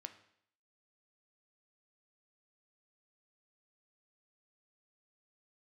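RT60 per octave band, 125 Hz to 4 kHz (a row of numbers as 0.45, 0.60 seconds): 0.65, 0.70, 0.65, 0.65, 0.65, 0.65 seconds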